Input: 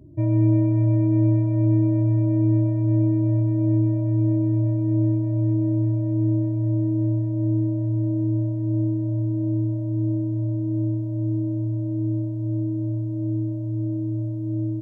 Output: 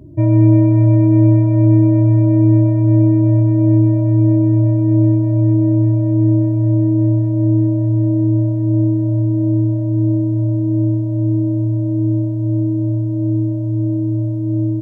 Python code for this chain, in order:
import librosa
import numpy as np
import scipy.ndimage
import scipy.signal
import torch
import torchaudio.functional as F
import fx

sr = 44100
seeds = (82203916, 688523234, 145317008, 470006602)

y = fx.peak_eq(x, sr, hz=1200.0, db=2.5, octaves=1.8)
y = y * librosa.db_to_amplitude(8.0)